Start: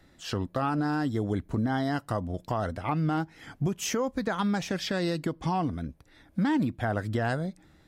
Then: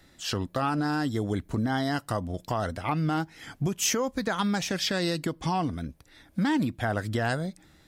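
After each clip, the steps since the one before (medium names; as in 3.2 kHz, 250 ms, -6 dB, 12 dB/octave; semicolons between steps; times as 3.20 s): treble shelf 2.4 kHz +8 dB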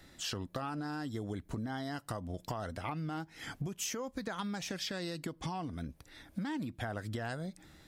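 compression 6:1, threshold -36 dBFS, peak gain reduction 13 dB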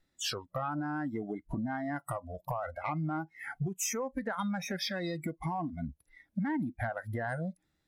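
spectral noise reduction 26 dB; in parallel at -8 dB: sine folder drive 3 dB, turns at -25.5 dBFS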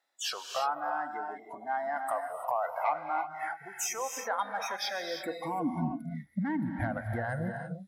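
high-pass sweep 750 Hz -> 61 Hz, 4.99–6.46 s; gated-style reverb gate 360 ms rising, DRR 5 dB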